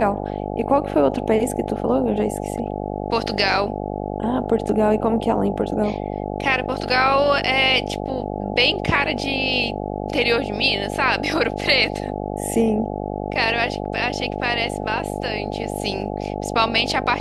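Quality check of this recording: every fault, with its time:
mains buzz 50 Hz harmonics 17 −27 dBFS

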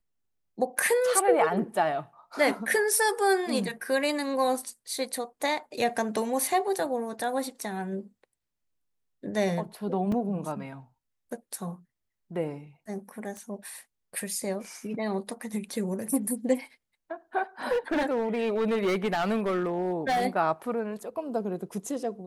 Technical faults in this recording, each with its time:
0:10.12: drop-out 3.4 ms
0:13.37: click −27 dBFS
0:17.71–0:20.26: clipping −22.5 dBFS

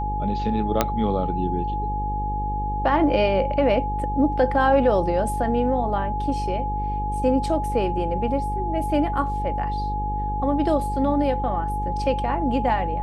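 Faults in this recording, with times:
mains buzz 50 Hz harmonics 10 −28 dBFS
whistle 840 Hz −26 dBFS
0:00.81: click −3 dBFS

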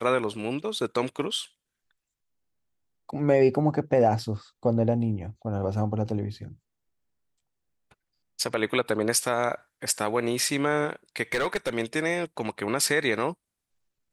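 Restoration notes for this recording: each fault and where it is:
0:11.32–0:11.70: clipping −21 dBFS

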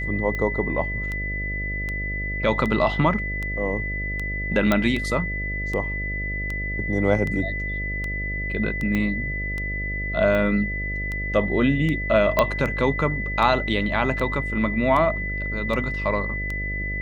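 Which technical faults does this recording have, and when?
mains buzz 50 Hz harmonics 13 −30 dBFS
scratch tick 78 rpm −17 dBFS
whistle 2,000 Hz −28 dBFS
0:04.72: click −7 dBFS
0:08.95: click −13 dBFS
0:12.39: click −5 dBFS

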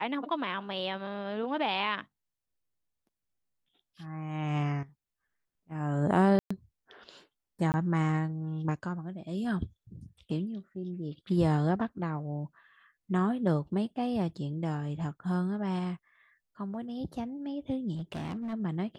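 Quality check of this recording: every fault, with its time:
0:06.39–0:06.50: drop-out 115 ms
0:07.72–0:07.74: drop-out 19 ms
0:17.95–0:18.54: clipping −32.5 dBFS

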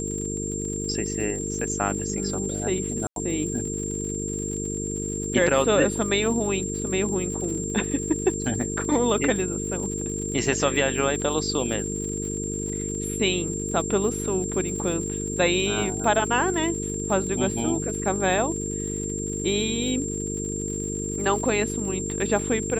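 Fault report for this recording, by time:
mains buzz 50 Hz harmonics 9 −31 dBFS
surface crackle 91 per second −34 dBFS
whistle 7,400 Hz −31 dBFS
0:03.07–0:03.16: drop-out 92 ms

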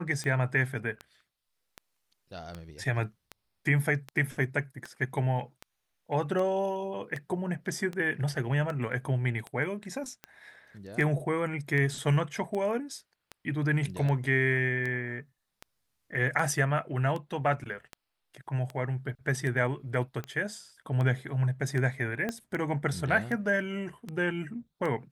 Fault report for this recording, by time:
scratch tick 78 rpm −23 dBFS
0:22.29: click −18 dBFS

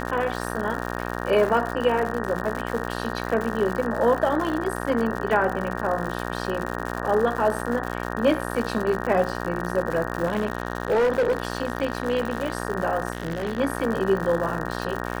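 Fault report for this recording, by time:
mains buzz 60 Hz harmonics 31 −30 dBFS
surface crackle 140 per second −28 dBFS
0:10.24–0:12.58: clipping −17 dBFS
0:13.12–0:13.60: clipping −22.5 dBFS

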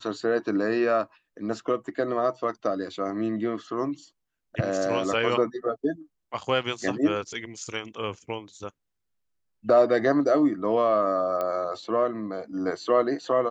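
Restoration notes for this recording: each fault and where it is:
0:11.41: click −17 dBFS

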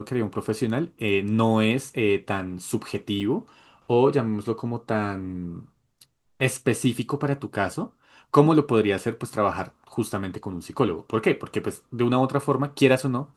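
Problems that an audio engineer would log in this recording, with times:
0:03.20–0:03.21: drop-out 6.4 ms

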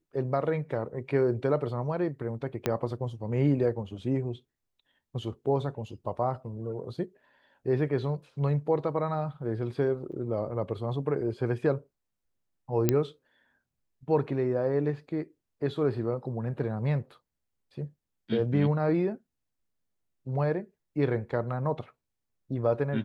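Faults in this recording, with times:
0:02.66: click −12 dBFS
0:10.12–0:10.13: drop-out 7.1 ms
0:12.89: click −9 dBFS

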